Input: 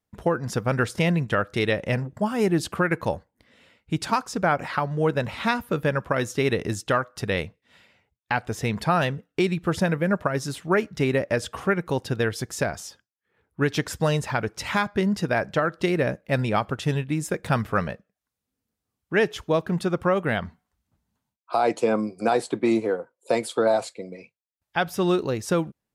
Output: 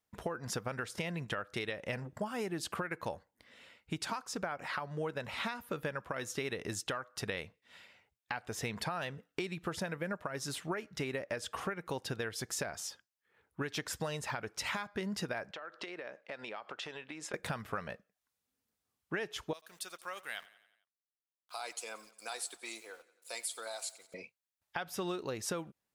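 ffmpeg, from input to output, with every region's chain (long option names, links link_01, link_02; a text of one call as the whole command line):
ffmpeg -i in.wav -filter_complex "[0:a]asettb=1/sr,asplit=3[link_01][link_02][link_03];[link_01]atrim=end=15.514[link_04];[link_02]atrim=start=15.51:end=17.34,asetpts=PTS-STARTPTS,afade=type=in:duration=0.004:curve=qsin,afade=type=out:start_time=1.826:duration=0.004:curve=qsin,highpass=400,lowpass=4700,acompressor=threshold=-36dB:ratio=20:attack=3.2:release=140:knee=1:detection=peak[link_05];[link_03]atrim=start=17.336[link_06];[link_04][link_05]acrossfade=duration=0.004:curve1=hsin:curve2=qsin[link_07];[link_07][link_06]acrossfade=duration=0.004:curve1=qsin:curve2=hsin,asettb=1/sr,asplit=3[link_08][link_09][link_10];[link_08]atrim=end=19.534[link_11];[link_09]atrim=start=19.53:end=24.14,asetpts=PTS-STARTPTS,afade=type=in:duration=0.004:curve=qsin,afade=type=out:start_time=4.606:duration=0.004:curve=qsin,aderivative,aeval=exprs='val(0)*gte(abs(val(0)),0.00133)':channel_layout=same,aecho=1:1:89|178|267|356|445:0.112|0.064|0.0365|0.0208|0.0118,atrim=end_sample=203301[link_12];[link_10]atrim=start=24.136[link_13];[link_11][link_12]acrossfade=duration=0.004:curve1=hsin:curve2=qsin[link_14];[link_14][link_13]acrossfade=duration=0.004:curve1=qsin:curve2=hsin,lowshelf=frequency=420:gain=-9.5,alimiter=limit=-18dB:level=0:latency=1:release=434,acompressor=threshold=-34dB:ratio=6" out.wav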